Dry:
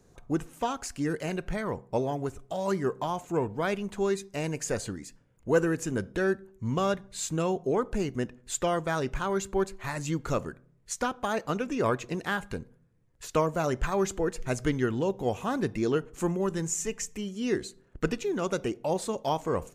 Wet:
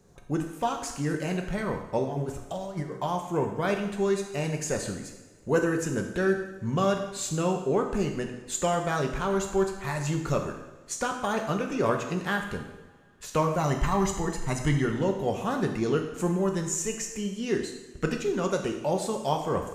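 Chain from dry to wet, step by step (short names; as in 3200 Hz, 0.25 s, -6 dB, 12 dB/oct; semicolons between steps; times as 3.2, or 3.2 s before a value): 2.04–3 negative-ratio compressor -34 dBFS, ratio -0.5; 13.58–14.85 comb 1 ms, depth 62%; on a send: reverb, pre-delay 3 ms, DRR 3 dB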